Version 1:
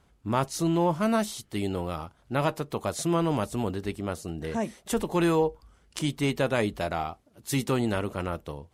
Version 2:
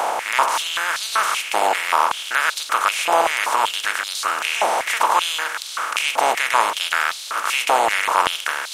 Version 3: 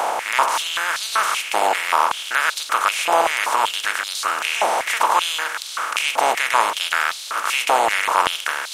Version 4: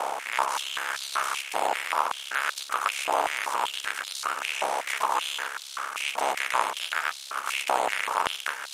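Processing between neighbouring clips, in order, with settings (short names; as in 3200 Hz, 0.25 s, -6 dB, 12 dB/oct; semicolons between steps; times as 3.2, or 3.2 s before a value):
per-bin compression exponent 0.2; stepped high-pass 5.2 Hz 790–4000 Hz
nothing audible
ring modulator 34 Hz; gain -5.5 dB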